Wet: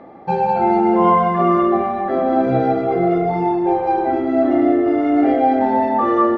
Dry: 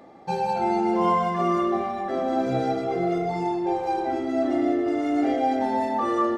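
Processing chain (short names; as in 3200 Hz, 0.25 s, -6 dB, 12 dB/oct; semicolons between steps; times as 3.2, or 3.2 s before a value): LPF 2100 Hz 12 dB/oct; gain +8 dB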